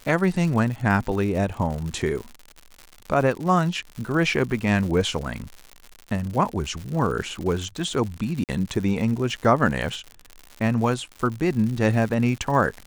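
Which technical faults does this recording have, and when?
surface crackle 130 per second −30 dBFS
0:08.44–0:08.49: drop-out 48 ms

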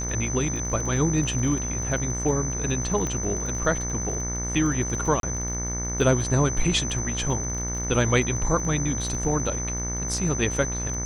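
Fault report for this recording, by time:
mains buzz 60 Hz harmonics 38 −31 dBFS
surface crackle 22 per second −31 dBFS
whistle 6,100 Hz −30 dBFS
0:03.07: click −16 dBFS
0:05.20–0:05.23: drop-out 32 ms

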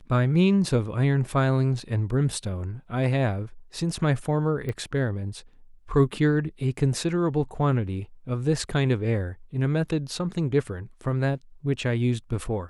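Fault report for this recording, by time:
0:04.69: click −20 dBFS

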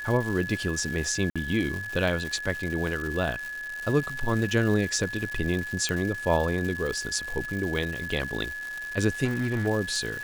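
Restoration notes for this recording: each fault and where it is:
surface crackle 350 per second −32 dBFS
whistle 1,700 Hz −33 dBFS
0:01.30–0:01.36: drop-out 56 ms
0:05.89: click −13 dBFS
0:09.24–0:09.68: clipping −22.5 dBFS

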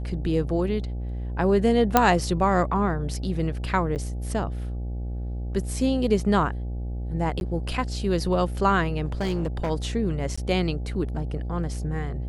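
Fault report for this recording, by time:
mains buzz 60 Hz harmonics 14 −30 dBFS
0:01.97: click −2 dBFS
0:03.95–0:03.96: drop-out 8.9 ms
0:07.40–0:07.41: drop-out 11 ms
0:09.04–0:09.71: clipping −21.5 dBFS
0:10.36–0:10.38: drop-out 15 ms

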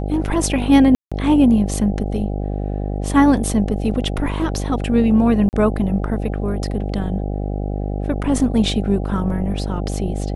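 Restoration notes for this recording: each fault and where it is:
mains buzz 50 Hz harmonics 16 −23 dBFS
0:00.95–0:01.12: drop-out 166 ms
0:05.49–0:05.53: drop-out 39 ms

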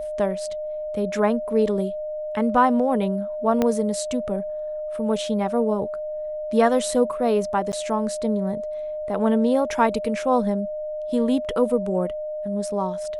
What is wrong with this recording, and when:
whistle 610 Hz −27 dBFS
0:03.62: click −9 dBFS
0:07.72–0:07.73: drop-out 9.3 ms

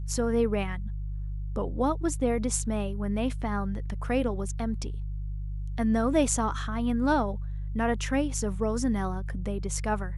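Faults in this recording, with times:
mains hum 50 Hz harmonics 3 −33 dBFS

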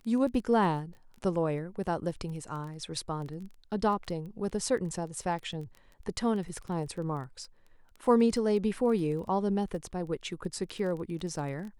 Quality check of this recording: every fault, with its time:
surface crackle 16 per second −38 dBFS

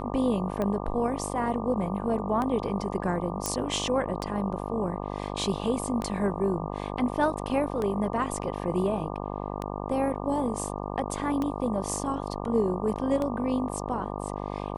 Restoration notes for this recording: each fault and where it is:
mains buzz 50 Hz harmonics 24 −34 dBFS
scratch tick 33 1/3 rpm −18 dBFS
0:03.46: click −12 dBFS

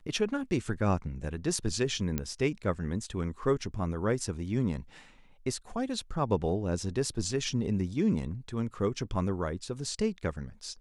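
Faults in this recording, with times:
0:02.18: click −15 dBFS

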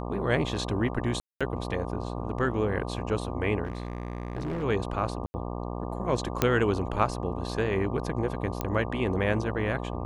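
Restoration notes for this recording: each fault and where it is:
mains buzz 60 Hz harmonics 20 −34 dBFS
0:01.20–0:01.41: drop-out 206 ms
0:03.65–0:04.64: clipping −28 dBFS
0:05.26–0:05.34: drop-out 80 ms
0:06.42: click −7 dBFS
0:08.61: click −14 dBFS

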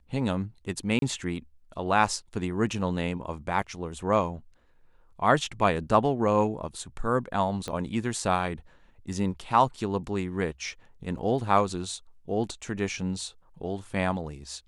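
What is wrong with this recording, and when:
0:00.99–0:01.02: drop-out 32 ms
0:07.68: click −20 dBFS
0:11.18: drop-out 2.6 ms

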